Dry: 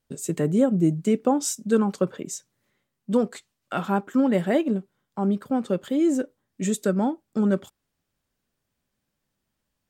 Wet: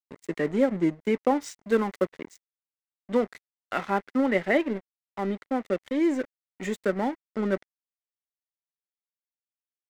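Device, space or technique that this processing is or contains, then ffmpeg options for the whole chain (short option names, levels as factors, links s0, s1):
pocket radio on a weak battery: -filter_complex "[0:a]highpass=270,lowpass=4300,aeval=exprs='sgn(val(0))*max(abs(val(0))-0.01,0)':c=same,equalizer=f=2000:t=o:w=0.35:g=11,asettb=1/sr,asplit=3[s0][s1][s2];[s0]atrim=end=1.624[s3];[s1]atrim=start=1.62:end=2.07,asetpts=PTS-STARTPTS,afade=t=in:d=0.004:c=qsin,afade=t=out:st=0.446:d=0.004:c=qsin,highshelf=f=8400:g=6.5[s4];[s2]atrim=start=2.066[s5];[s3][s4]acrossfade=d=0.004:c1=hsin:c2=qsin[s6];[s6][s5]acrossfade=d=0.004:c1=qsin:c2=hsin"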